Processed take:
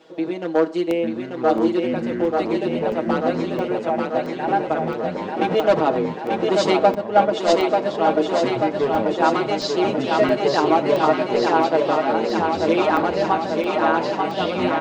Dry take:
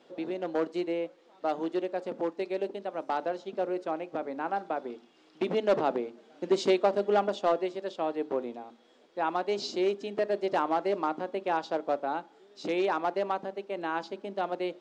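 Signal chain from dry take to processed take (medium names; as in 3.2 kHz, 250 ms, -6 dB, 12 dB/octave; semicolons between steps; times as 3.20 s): comb 6.3 ms, depth 78%; ever faster or slower copies 775 ms, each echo -6 st, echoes 2, each echo -6 dB; 3.90–4.48 s: static phaser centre 1.2 kHz, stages 6; thinning echo 888 ms, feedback 72%, high-pass 210 Hz, level -3.5 dB; on a send at -18.5 dB: reverberation RT60 0.45 s, pre-delay 42 ms; on the sum: crackling interface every 0.67 s, samples 64, zero, from 0.91 s; 6.95–7.53 s: three bands expanded up and down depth 100%; trim +6.5 dB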